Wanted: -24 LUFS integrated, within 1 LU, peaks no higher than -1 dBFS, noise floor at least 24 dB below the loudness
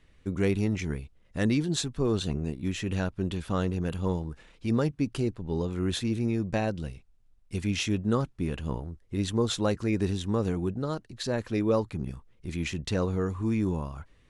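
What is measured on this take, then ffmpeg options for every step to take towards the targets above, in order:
loudness -30.0 LUFS; peak -13.0 dBFS; loudness target -24.0 LUFS
-> -af "volume=6dB"

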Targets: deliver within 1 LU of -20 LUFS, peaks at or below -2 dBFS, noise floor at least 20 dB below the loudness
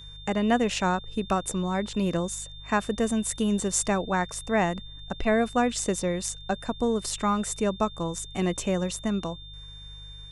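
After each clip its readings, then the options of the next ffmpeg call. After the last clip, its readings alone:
hum 50 Hz; harmonics up to 150 Hz; hum level -43 dBFS; steady tone 3600 Hz; tone level -44 dBFS; loudness -27.5 LUFS; peak -9.5 dBFS; loudness target -20.0 LUFS
-> -af "bandreject=f=50:t=h:w=4,bandreject=f=100:t=h:w=4,bandreject=f=150:t=h:w=4"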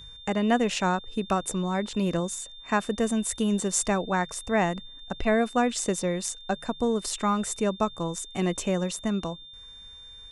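hum none; steady tone 3600 Hz; tone level -44 dBFS
-> -af "bandreject=f=3.6k:w=30"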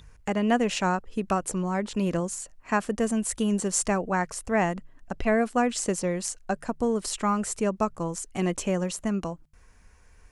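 steady tone none; loudness -27.5 LUFS; peak -10.0 dBFS; loudness target -20.0 LUFS
-> -af "volume=7.5dB"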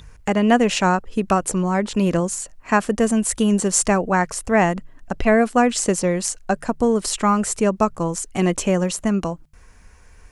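loudness -20.0 LUFS; peak -2.5 dBFS; noise floor -47 dBFS

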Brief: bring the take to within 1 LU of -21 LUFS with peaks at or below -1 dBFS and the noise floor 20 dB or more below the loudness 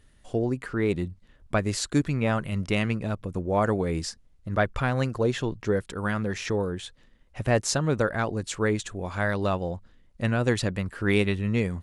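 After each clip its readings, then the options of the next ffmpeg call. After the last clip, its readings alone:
loudness -27.5 LUFS; peak -9.0 dBFS; loudness target -21.0 LUFS
-> -af "volume=6.5dB"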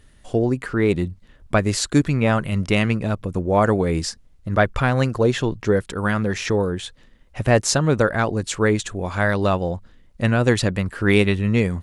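loudness -21.0 LUFS; peak -2.5 dBFS; noise floor -52 dBFS

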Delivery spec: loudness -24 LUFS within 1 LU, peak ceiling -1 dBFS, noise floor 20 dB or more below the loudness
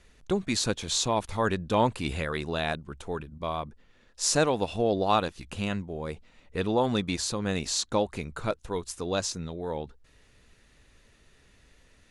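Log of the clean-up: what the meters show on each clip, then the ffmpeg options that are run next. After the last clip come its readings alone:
loudness -29.0 LUFS; peak -8.0 dBFS; loudness target -24.0 LUFS
-> -af "volume=5dB"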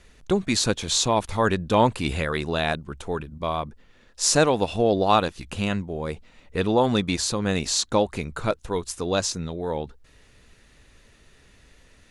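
loudness -24.0 LUFS; peak -3.0 dBFS; noise floor -56 dBFS

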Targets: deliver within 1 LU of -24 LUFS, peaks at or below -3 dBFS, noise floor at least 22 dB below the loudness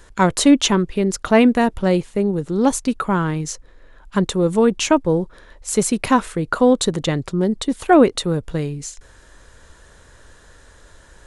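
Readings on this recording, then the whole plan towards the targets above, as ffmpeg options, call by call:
loudness -18.5 LUFS; peak -1.5 dBFS; loudness target -24.0 LUFS
-> -af "volume=-5.5dB"

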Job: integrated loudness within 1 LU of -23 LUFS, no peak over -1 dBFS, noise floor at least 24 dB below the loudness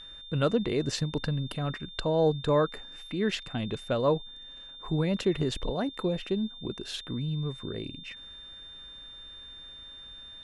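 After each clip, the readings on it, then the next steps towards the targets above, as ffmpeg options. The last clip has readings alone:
steady tone 3600 Hz; tone level -44 dBFS; loudness -30.0 LUFS; peak -13.0 dBFS; loudness target -23.0 LUFS
-> -af "bandreject=f=3.6k:w=30"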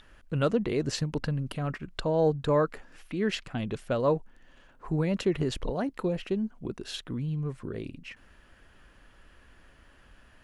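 steady tone none; loudness -30.5 LUFS; peak -13.5 dBFS; loudness target -23.0 LUFS
-> -af "volume=7.5dB"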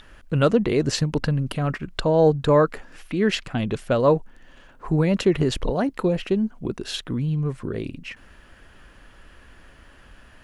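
loudness -23.0 LUFS; peak -6.0 dBFS; noise floor -51 dBFS

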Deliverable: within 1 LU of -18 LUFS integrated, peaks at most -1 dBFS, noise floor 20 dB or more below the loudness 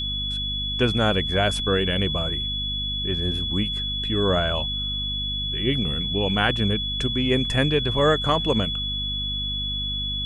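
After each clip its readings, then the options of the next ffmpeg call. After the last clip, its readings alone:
hum 50 Hz; harmonics up to 250 Hz; hum level -29 dBFS; steady tone 3400 Hz; tone level -26 dBFS; loudness -23.0 LUFS; peak -6.0 dBFS; loudness target -18.0 LUFS
-> -af "bandreject=f=50:t=h:w=4,bandreject=f=100:t=h:w=4,bandreject=f=150:t=h:w=4,bandreject=f=200:t=h:w=4,bandreject=f=250:t=h:w=4"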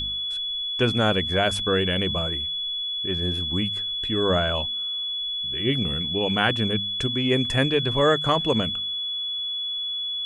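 hum none; steady tone 3400 Hz; tone level -26 dBFS
-> -af "bandreject=f=3.4k:w=30"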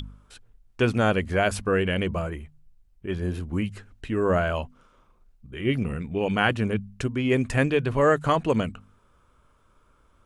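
steady tone none; loudness -25.5 LUFS; peak -6.0 dBFS; loudness target -18.0 LUFS
-> -af "volume=7.5dB,alimiter=limit=-1dB:level=0:latency=1"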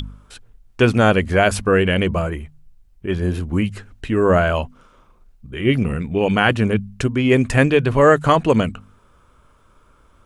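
loudness -18.0 LUFS; peak -1.0 dBFS; noise floor -55 dBFS

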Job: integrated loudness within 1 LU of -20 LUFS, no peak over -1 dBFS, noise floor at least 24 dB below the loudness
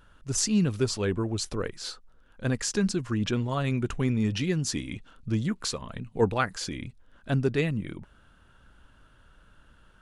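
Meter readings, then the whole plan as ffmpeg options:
loudness -29.0 LUFS; peak -10.5 dBFS; loudness target -20.0 LUFS
-> -af "volume=9dB"

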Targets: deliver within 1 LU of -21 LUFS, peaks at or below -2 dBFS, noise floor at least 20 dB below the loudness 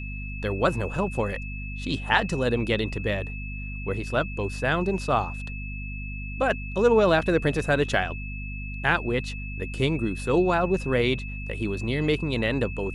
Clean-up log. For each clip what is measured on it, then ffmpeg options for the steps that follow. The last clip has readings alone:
hum 50 Hz; harmonics up to 250 Hz; hum level -32 dBFS; steady tone 2600 Hz; tone level -38 dBFS; loudness -26.0 LUFS; peak -5.5 dBFS; loudness target -21.0 LUFS
-> -af "bandreject=f=50:t=h:w=4,bandreject=f=100:t=h:w=4,bandreject=f=150:t=h:w=4,bandreject=f=200:t=h:w=4,bandreject=f=250:t=h:w=4"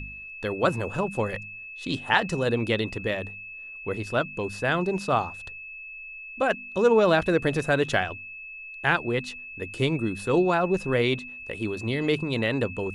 hum none; steady tone 2600 Hz; tone level -38 dBFS
-> -af "bandreject=f=2.6k:w=30"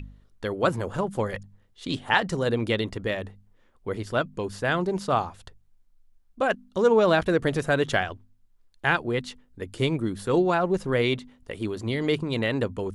steady tone none; loudness -26.0 LUFS; peak -5.5 dBFS; loudness target -21.0 LUFS
-> -af "volume=5dB,alimiter=limit=-2dB:level=0:latency=1"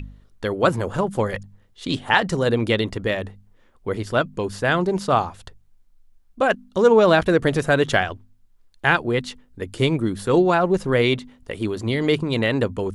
loudness -21.0 LUFS; peak -2.0 dBFS; noise floor -56 dBFS

